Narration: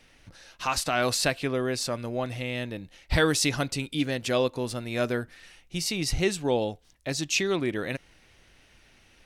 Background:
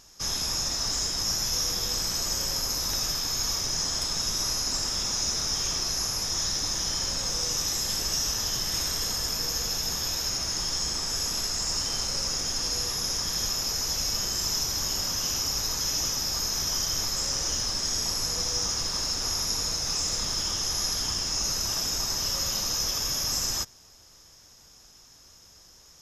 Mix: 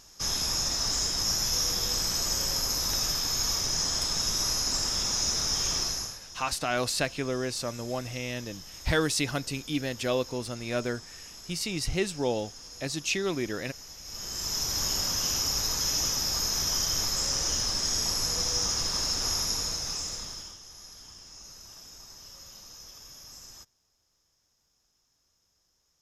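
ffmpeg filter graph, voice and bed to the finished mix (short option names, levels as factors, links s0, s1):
-filter_complex "[0:a]adelay=5750,volume=0.708[s0];[1:a]volume=7.08,afade=t=out:st=5.81:d=0.38:silence=0.141254,afade=t=in:st=14.03:d=0.79:silence=0.141254,afade=t=out:st=19.33:d=1.26:silence=0.105925[s1];[s0][s1]amix=inputs=2:normalize=0"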